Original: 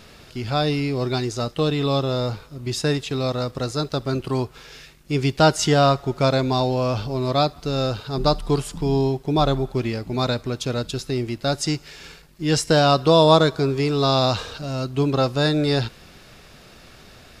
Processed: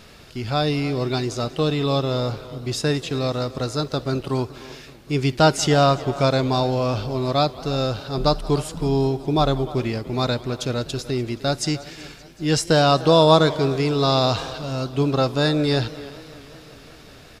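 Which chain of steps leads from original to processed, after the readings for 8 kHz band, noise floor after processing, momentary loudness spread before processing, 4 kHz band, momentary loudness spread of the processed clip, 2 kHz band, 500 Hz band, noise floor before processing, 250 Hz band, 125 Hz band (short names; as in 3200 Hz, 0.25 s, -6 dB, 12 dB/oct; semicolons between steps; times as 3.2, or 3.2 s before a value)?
0.0 dB, -45 dBFS, 10 LU, 0.0 dB, 12 LU, 0.0 dB, 0.0 dB, -48 dBFS, 0.0 dB, 0.0 dB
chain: speakerphone echo 0.3 s, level -16 dB; warbling echo 0.189 s, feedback 77%, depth 217 cents, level -21.5 dB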